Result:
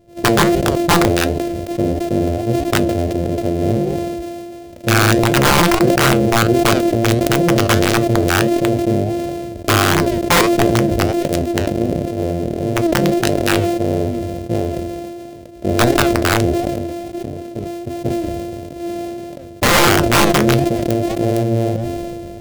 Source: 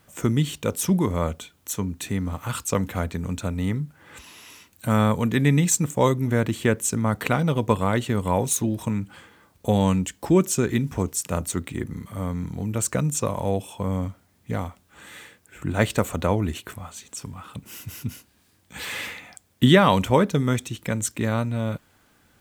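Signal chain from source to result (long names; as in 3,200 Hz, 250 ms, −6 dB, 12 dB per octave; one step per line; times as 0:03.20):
samples sorted by size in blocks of 128 samples
in parallel at −4 dB: soft clipping −18.5 dBFS, distortion −9 dB
on the sum: low shelf with overshoot 780 Hz +11 dB, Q 3
wrap-around overflow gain −1.5 dB
flanger 1.5 Hz, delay 6.6 ms, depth 3.8 ms, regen +72%
level that may fall only so fast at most 22 dB per second
level −3.5 dB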